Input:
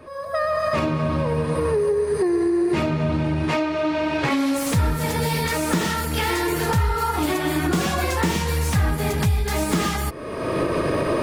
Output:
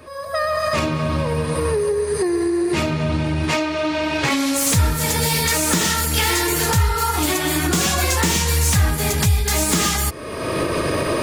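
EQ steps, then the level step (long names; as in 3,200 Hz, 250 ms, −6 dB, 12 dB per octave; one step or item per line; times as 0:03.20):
parametric band 81 Hz +4.5 dB 0.79 octaves
high-shelf EQ 2,500 Hz +10.5 dB
dynamic equaliser 6,900 Hz, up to +4 dB, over −38 dBFS, Q 2.4
0.0 dB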